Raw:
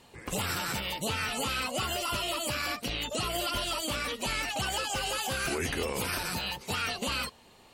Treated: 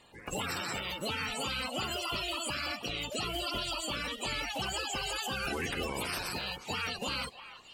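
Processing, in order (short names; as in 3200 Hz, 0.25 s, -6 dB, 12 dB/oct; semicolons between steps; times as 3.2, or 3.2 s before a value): bin magnitudes rounded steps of 30 dB; delay with a stepping band-pass 0.318 s, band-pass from 1000 Hz, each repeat 1.4 oct, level -10 dB; gain -2.5 dB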